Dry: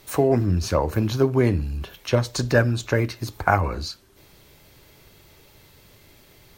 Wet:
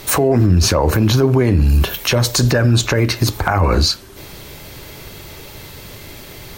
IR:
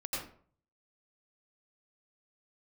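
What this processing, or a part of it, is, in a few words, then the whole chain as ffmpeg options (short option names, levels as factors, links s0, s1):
loud club master: -filter_complex "[0:a]asettb=1/sr,asplit=3[s0][s1][s2];[s0]atrim=end=1.694[s3];[s1]atrim=start=1.69:end=2.51,asetpts=PTS-STARTPTS,afade=t=in:d=0.004:c=qsin,afade=t=out:st=0.816:d=0.004:c=qsin,highshelf=f=9600:g=11[s4];[s2]atrim=start=2.506[s5];[s3][s4]acrossfade=d=0.004:c1=hsin:c2=qsin[s6];[s6][s5]acrossfade=d=0.004:c1=qsin:c2=hsin,acompressor=threshold=0.0891:ratio=3,asoftclip=type=hard:threshold=0.335,alimiter=level_in=11.2:limit=0.891:release=50:level=0:latency=1,volume=0.631"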